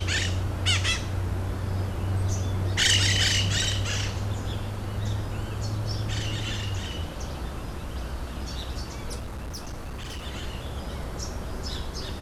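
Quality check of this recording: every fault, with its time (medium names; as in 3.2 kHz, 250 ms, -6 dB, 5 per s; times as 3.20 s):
9.19–10.27 s: clipped -31.5 dBFS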